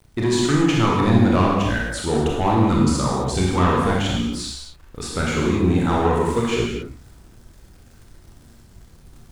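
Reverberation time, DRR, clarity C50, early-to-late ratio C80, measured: no single decay rate, -3.5 dB, -0.5 dB, 2.5 dB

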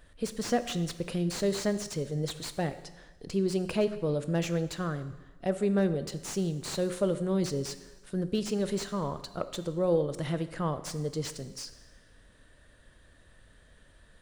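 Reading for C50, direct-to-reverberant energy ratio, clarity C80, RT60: 12.5 dB, 11.0 dB, 14.5 dB, 1.2 s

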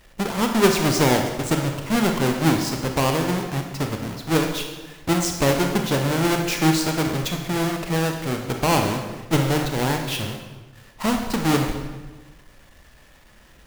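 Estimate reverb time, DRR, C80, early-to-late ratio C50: 1.2 s, 3.0 dB, 7.0 dB, 5.0 dB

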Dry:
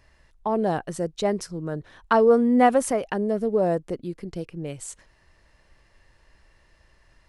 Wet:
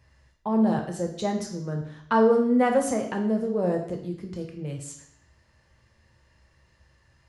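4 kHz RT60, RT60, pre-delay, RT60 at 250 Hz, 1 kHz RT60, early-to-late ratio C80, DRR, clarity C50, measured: 0.65 s, 0.70 s, 3 ms, 0.70 s, 0.65 s, 10.5 dB, 2.0 dB, 7.5 dB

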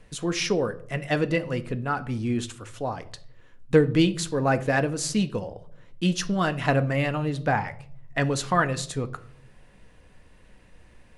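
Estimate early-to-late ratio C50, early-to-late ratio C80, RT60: 17.5 dB, 22.0 dB, 0.60 s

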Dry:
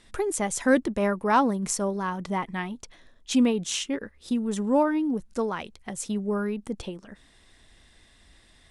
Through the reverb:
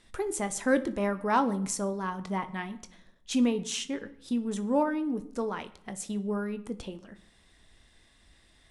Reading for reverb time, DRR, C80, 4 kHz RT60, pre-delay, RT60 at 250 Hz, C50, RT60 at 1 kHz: 0.70 s, 10.5 dB, 20.0 dB, 0.55 s, 21 ms, 1.1 s, 16.0 dB, 0.75 s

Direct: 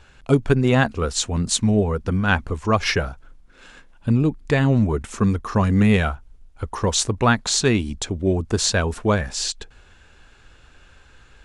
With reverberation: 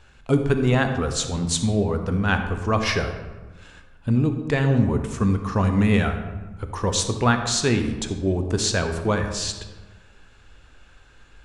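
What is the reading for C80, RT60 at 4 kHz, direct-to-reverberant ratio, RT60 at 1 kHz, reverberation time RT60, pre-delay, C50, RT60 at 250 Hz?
9.0 dB, 0.75 s, 6.0 dB, 1.2 s, 1.2 s, 17 ms, 7.5 dB, 1.5 s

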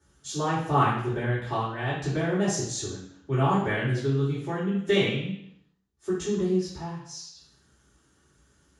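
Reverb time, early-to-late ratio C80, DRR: 0.70 s, 7.0 dB, -11.0 dB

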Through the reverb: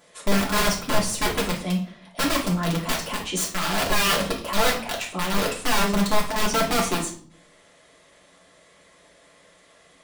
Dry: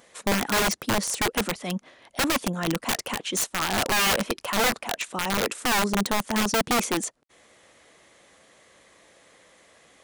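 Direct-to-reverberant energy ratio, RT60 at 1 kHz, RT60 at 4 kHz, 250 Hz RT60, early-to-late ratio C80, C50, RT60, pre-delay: -4.5 dB, 0.45 s, 0.45 s, 0.75 s, 12.5 dB, 7.5 dB, 0.50 s, 3 ms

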